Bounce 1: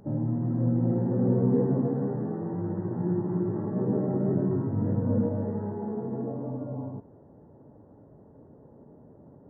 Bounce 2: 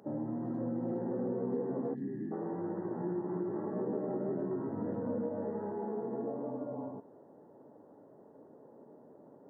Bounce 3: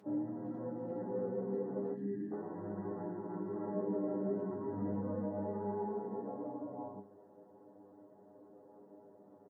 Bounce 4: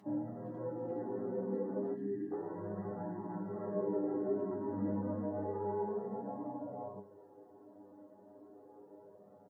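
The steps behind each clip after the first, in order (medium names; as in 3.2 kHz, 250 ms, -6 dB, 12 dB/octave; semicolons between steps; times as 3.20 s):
time-frequency box 1.95–2.32 s, 400–1600 Hz -25 dB; high-pass 310 Hz 12 dB/octave; compression 4:1, threshold -32 dBFS, peak gain reduction 8 dB
inharmonic resonator 99 Hz, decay 0.22 s, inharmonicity 0.002; delay 139 ms -19 dB; trim +5.5 dB
flange 0.31 Hz, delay 1 ms, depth 2.6 ms, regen -33%; trim +5 dB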